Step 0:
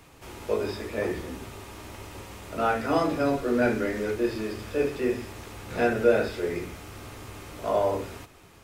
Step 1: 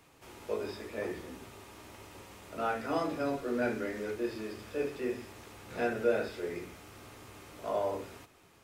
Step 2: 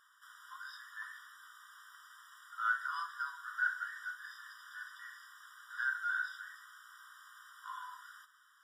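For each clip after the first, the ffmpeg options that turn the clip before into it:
-af "lowshelf=f=80:g=-10.5,volume=-7.5dB"
-af "equalizer=f=1.5k:w=4.6:g=11.5,afftfilt=real='re*eq(mod(floor(b*sr/1024/970),2),1)':imag='im*eq(mod(floor(b*sr/1024/970),2),1)':win_size=1024:overlap=0.75,volume=-3dB"

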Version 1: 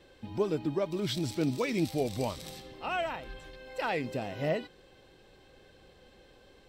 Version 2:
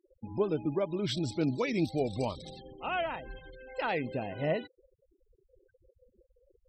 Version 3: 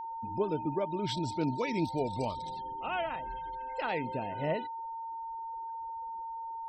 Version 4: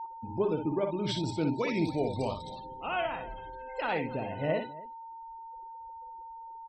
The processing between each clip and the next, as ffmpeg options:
-af "afftfilt=real='re*gte(hypot(re,im),0.00794)':imag='im*gte(hypot(re,im),0.00794)':win_size=1024:overlap=0.75"
-af "aeval=exprs='val(0)+0.0178*sin(2*PI*910*n/s)':c=same,volume=-2dB"
-af "aecho=1:1:50|60|271:0.237|0.473|0.112,afftdn=nr=19:nf=-54,volume=1.5dB"

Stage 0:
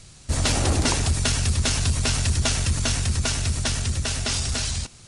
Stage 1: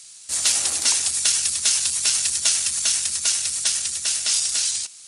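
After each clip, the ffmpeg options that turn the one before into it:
-af "aderivative,volume=8.5dB"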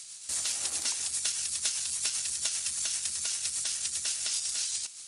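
-af "acompressor=threshold=-28dB:ratio=5,tremolo=f=7.8:d=0.35"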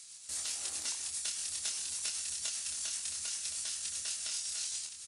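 -filter_complex "[0:a]asplit=2[a][b];[b]adelay=26,volume=-4dB[c];[a][c]amix=inputs=2:normalize=0,aecho=1:1:1068:0.316,volume=-7.5dB"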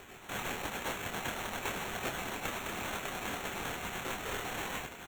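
-af "acrusher=samples=9:mix=1:aa=0.000001"

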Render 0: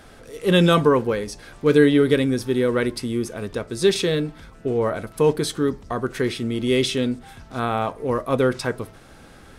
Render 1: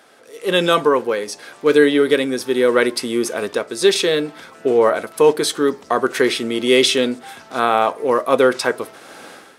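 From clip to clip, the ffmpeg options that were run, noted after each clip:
-af "highpass=370,dynaudnorm=f=150:g=5:m=15.5dB,volume=-1dB"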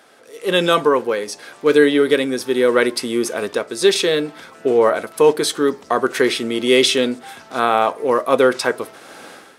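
-af anull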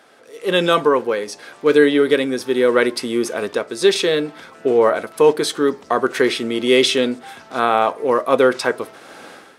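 -af "highshelf=f=6.3k:g=-5.5"

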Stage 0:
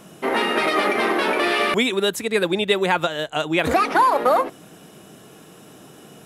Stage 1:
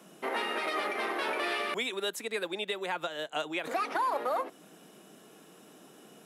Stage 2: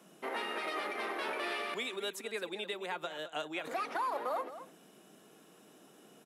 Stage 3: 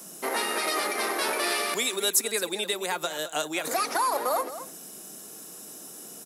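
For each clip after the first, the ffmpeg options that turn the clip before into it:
-filter_complex "[0:a]highpass=f=180:w=0.5412,highpass=f=180:w=1.3066,acrossover=split=400[a][b];[a]acompressor=threshold=-37dB:ratio=6[c];[b]alimiter=limit=-13dB:level=0:latency=1:release=358[d];[c][d]amix=inputs=2:normalize=0,volume=-9dB"
-filter_complex "[0:a]asplit=2[a][b];[b]adelay=215.7,volume=-12dB,highshelf=f=4k:g=-4.85[c];[a][c]amix=inputs=2:normalize=0,volume=-5dB"
-af "aexciter=amount=3.6:drive=8:freq=4.4k,volume=8.5dB"

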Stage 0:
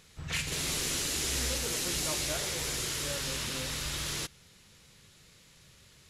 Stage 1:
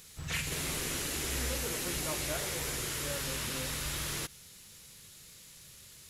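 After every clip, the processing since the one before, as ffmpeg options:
-filter_complex "[0:a]aemphasis=mode=production:type=50fm,acrossover=split=2600[a][b];[b]acompressor=threshold=-37dB:ratio=4:attack=1:release=60[c];[a][c]amix=inputs=2:normalize=0"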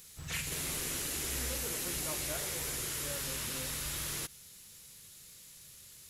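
-af "highshelf=f=7.1k:g=7,volume=-4dB"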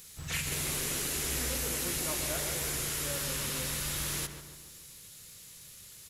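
-filter_complex "[0:a]asplit=2[a][b];[b]adelay=144,lowpass=f=2.2k:p=1,volume=-7.5dB,asplit=2[c][d];[d]adelay=144,lowpass=f=2.2k:p=1,volume=0.53,asplit=2[e][f];[f]adelay=144,lowpass=f=2.2k:p=1,volume=0.53,asplit=2[g][h];[h]adelay=144,lowpass=f=2.2k:p=1,volume=0.53,asplit=2[i][j];[j]adelay=144,lowpass=f=2.2k:p=1,volume=0.53,asplit=2[k][l];[l]adelay=144,lowpass=f=2.2k:p=1,volume=0.53[m];[a][c][e][g][i][k][m]amix=inputs=7:normalize=0,volume=3dB"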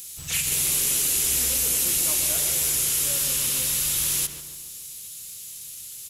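-af "aexciter=amount=2.5:drive=6:freq=2.5k"

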